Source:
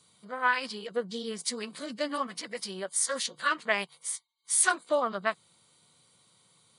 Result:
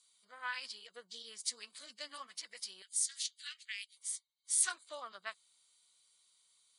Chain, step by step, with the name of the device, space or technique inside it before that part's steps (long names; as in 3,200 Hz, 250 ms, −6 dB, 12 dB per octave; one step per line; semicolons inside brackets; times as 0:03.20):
0:02.82–0:03.97: inverse Chebyshev high-pass filter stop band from 620 Hz, stop band 60 dB
piezo pickup straight into a mixer (low-pass filter 8,100 Hz 12 dB per octave; first difference)
high-shelf EQ 7,100 Hz −4 dB